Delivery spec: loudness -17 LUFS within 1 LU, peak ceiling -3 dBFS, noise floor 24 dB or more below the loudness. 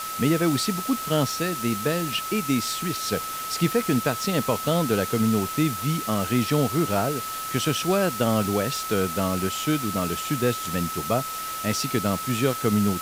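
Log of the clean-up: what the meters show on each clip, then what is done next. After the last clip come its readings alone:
steady tone 1300 Hz; tone level -31 dBFS; noise floor -32 dBFS; noise floor target -49 dBFS; loudness -24.5 LUFS; peak -9.0 dBFS; loudness target -17.0 LUFS
-> notch 1300 Hz, Q 30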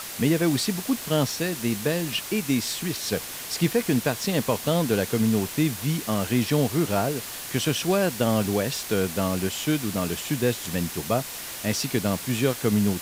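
steady tone none; noise floor -36 dBFS; noise floor target -49 dBFS
-> denoiser 13 dB, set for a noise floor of -36 dBFS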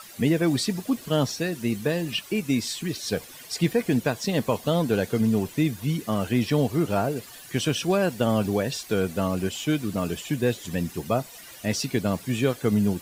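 noise floor -45 dBFS; noise floor target -50 dBFS
-> denoiser 6 dB, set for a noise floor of -45 dBFS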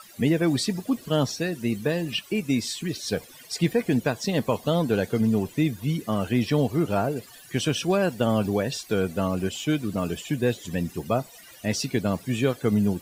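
noise floor -48 dBFS; noise floor target -50 dBFS
-> denoiser 6 dB, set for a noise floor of -48 dBFS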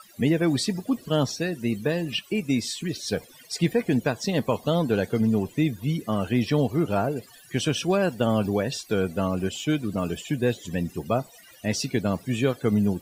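noise floor -51 dBFS; loudness -26.0 LUFS; peak -9.0 dBFS; loudness target -17.0 LUFS
-> gain +9 dB; limiter -3 dBFS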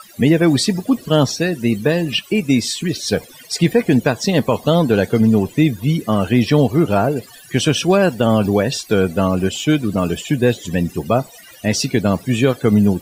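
loudness -17.0 LUFS; peak -3.0 dBFS; noise floor -42 dBFS

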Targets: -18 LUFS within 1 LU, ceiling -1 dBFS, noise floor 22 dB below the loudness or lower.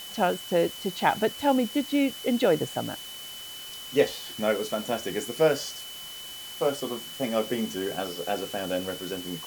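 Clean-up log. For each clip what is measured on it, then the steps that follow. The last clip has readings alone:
steady tone 3000 Hz; tone level -40 dBFS; noise floor -41 dBFS; noise floor target -50 dBFS; loudness -28.0 LUFS; peak -8.5 dBFS; loudness target -18.0 LUFS
-> notch 3000 Hz, Q 30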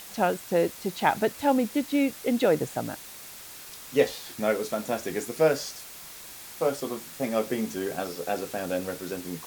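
steady tone none; noise floor -44 dBFS; noise floor target -50 dBFS
-> noise print and reduce 6 dB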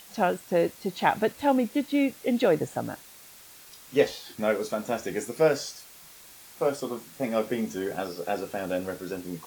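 noise floor -50 dBFS; loudness -28.0 LUFS; peak -8.5 dBFS; loudness target -18.0 LUFS
-> gain +10 dB; limiter -1 dBFS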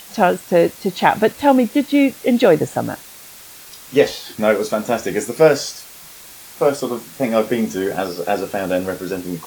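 loudness -18.0 LUFS; peak -1.0 dBFS; noise floor -40 dBFS

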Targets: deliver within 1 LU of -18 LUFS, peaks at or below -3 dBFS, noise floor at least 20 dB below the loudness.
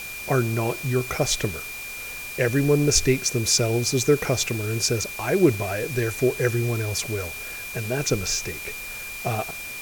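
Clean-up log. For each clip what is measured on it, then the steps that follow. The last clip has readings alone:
steady tone 2400 Hz; tone level -34 dBFS; noise floor -35 dBFS; noise floor target -44 dBFS; loudness -24.0 LUFS; peak -5.5 dBFS; loudness target -18.0 LUFS
-> notch 2400 Hz, Q 30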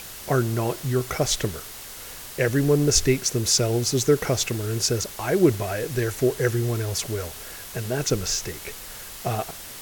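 steady tone none; noise floor -39 dBFS; noise floor target -44 dBFS
-> denoiser 6 dB, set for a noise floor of -39 dBFS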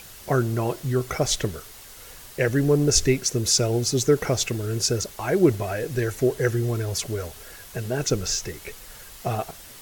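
noise floor -44 dBFS; loudness -23.5 LUFS; peak -5.5 dBFS; loudness target -18.0 LUFS
-> gain +5.5 dB; limiter -3 dBFS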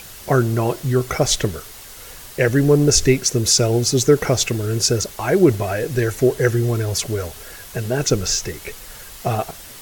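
loudness -18.5 LUFS; peak -3.0 dBFS; noise floor -39 dBFS

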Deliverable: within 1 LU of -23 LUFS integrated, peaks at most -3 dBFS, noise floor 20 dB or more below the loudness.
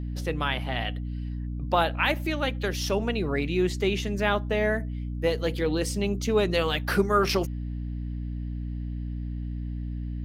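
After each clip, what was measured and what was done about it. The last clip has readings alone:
hum 60 Hz; harmonics up to 300 Hz; hum level -30 dBFS; loudness -28.0 LUFS; peak -9.5 dBFS; loudness target -23.0 LUFS
-> notches 60/120/180/240/300 Hz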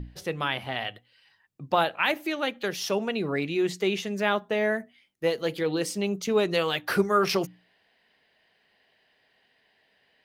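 hum none; loudness -27.5 LUFS; peak -10.0 dBFS; loudness target -23.0 LUFS
-> gain +4.5 dB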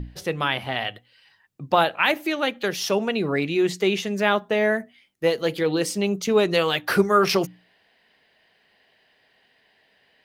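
loudness -23.0 LUFS; peak -5.5 dBFS; noise floor -63 dBFS

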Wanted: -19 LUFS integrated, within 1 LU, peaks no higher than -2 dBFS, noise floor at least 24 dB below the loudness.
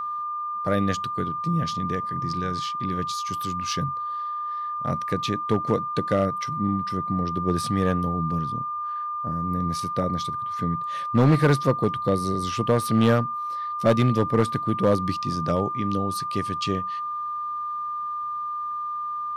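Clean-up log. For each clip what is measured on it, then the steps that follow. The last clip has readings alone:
clipped 0.5%; flat tops at -12.0 dBFS; steady tone 1200 Hz; tone level -27 dBFS; loudness -25.5 LUFS; peak -12.0 dBFS; loudness target -19.0 LUFS
-> clip repair -12 dBFS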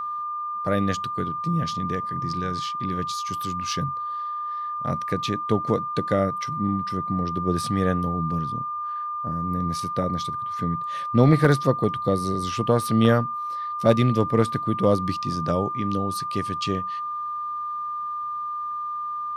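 clipped 0.0%; steady tone 1200 Hz; tone level -27 dBFS
-> notch 1200 Hz, Q 30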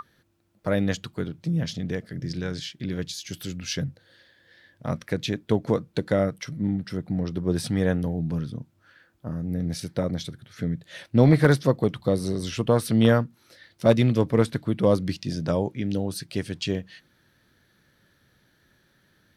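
steady tone none; loudness -26.0 LUFS; peak -4.5 dBFS; loudness target -19.0 LUFS
-> gain +7 dB; limiter -2 dBFS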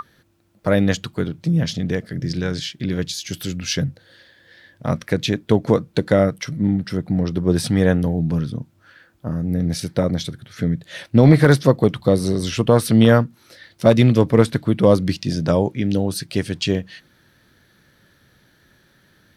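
loudness -19.5 LUFS; peak -2.0 dBFS; noise floor -58 dBFS

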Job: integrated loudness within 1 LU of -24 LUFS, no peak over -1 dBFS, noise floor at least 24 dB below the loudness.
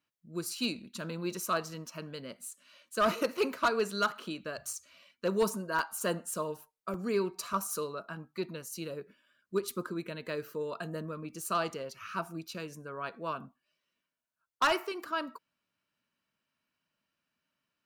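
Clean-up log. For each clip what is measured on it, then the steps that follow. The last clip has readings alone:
clipped 0.2%; flat tops at -21.0 dBFS; dropouts 5; longest dropout 2.9 ms; loudness -35.0 LUFS; peak -21.0 dBFS; loudness target -24.0 LUFS
-> clip repair -21 dBFS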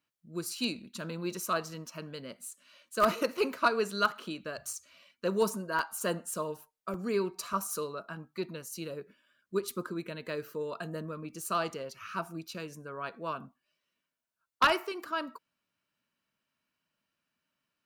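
clipped 0.0%; dropouts 5; longest dropout 2.9 ms
-> interpolate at 3.37/4.73/5.79/6.94/7.53, 2.9 ms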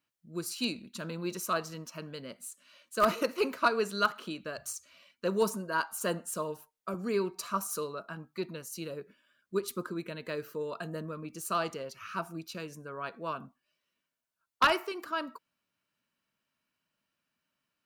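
dropouts 0; loudness -34.0 LUFS; peak -12.0 dBFS; loudness target -24.0 LUFS
-> gain +10 dB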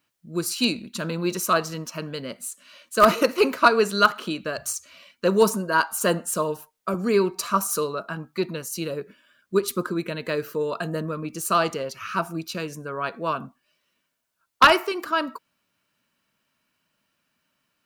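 loudness -24.0 LUFS; peak -2.0 dBFS; noise floor -75 dBFS

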